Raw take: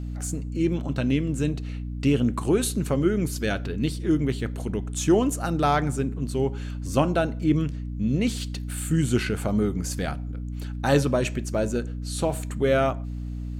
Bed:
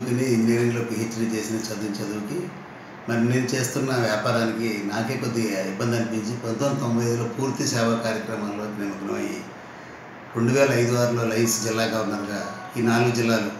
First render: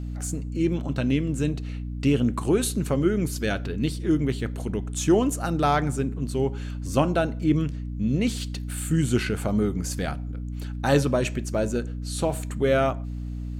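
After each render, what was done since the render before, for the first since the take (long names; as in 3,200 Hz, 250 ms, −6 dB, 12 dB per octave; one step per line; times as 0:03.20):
no processing that can be heard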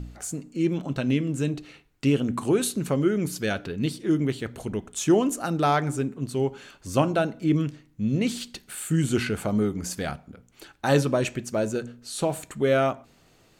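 hum removal 60 Hz, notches 5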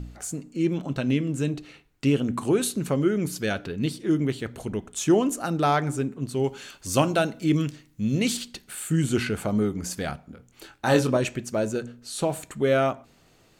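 0:06.44–0:08.37: high-shelf EQ 2,700 Hz +9.5 dB
0:10.26–0:11.17: double-tracking delay 24 ms −5.5 dB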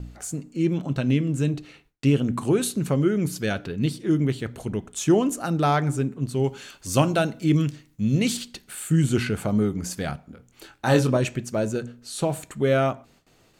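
dynamic equaliser 130 Hz, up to +5 dB, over −39 dBFS, Q 1.2
noise gate with hold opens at −48 dBFS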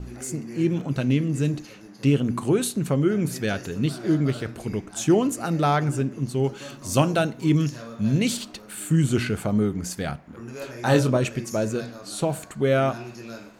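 mix in bed −17.5 dB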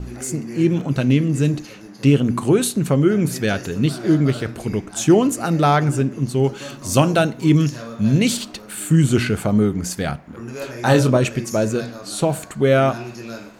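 level +5.5 dB
brickwall limiter −3 dBFS, peak gain reduction 2.5 dB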